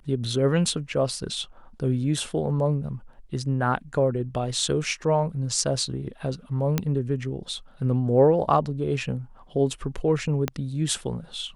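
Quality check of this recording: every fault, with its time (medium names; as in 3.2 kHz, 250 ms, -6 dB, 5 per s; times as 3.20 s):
6.78 s: pop -9 dBFS
10.48 s: pop -11 dBFS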